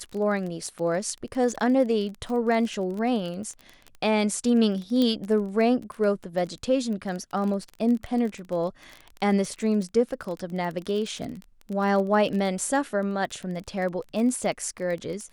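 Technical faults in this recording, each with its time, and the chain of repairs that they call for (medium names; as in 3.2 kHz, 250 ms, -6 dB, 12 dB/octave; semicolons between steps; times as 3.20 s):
crackle 22 per s -31 dBFS
5.02 s: pop -14 dBFS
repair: de-click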